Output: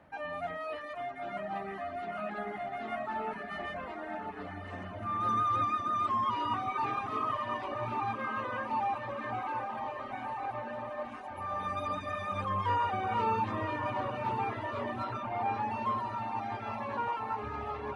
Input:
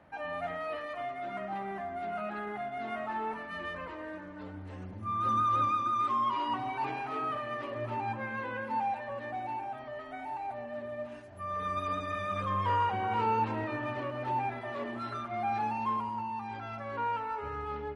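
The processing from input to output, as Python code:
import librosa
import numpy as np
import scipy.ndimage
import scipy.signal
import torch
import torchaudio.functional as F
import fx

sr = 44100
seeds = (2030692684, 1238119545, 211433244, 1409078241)

y = fx.echo_diffused(x, sr, ms=1102, feedback_pct=64, wet_db=-6.5)
y = fx.dereverb_blind(y, sr, rt60_s=0.64)
y = fx.high_shelf(y, sr, hz=fx.line((15.03, 5200.0), (15.7, 4100.0)), db=-8.0, at=(15.03, 15.7), fade=0.02)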